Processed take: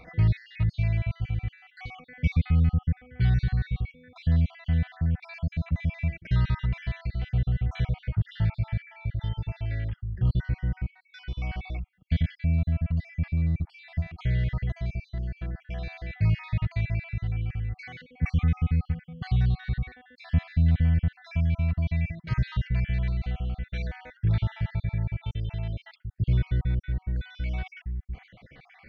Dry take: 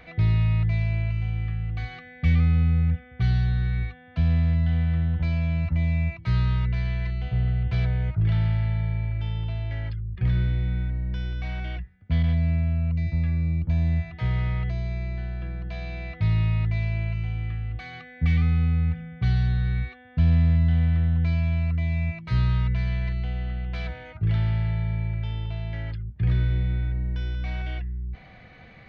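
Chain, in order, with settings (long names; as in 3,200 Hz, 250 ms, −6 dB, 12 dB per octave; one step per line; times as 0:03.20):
time-frequency cells dropped at random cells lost 50%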